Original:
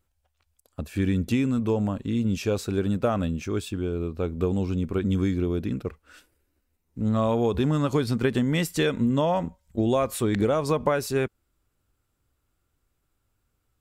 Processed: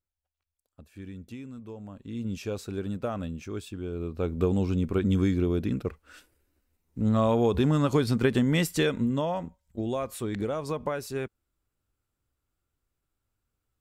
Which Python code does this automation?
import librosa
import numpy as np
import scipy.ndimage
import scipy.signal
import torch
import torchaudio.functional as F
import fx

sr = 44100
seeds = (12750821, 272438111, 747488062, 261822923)

y = fx.gain(x, sr, db=fx.line((1.82, -17.5), (2.25, -7.5), (3.78, -7.5), (4.33, 0.0), (8.69, 0.0), (9.47, -7.5)))